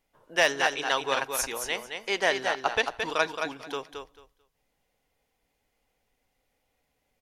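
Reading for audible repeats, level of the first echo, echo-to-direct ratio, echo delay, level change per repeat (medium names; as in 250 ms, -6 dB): 2, -6.0 dB, -6.0 dB, 221 ms, -15.0 dB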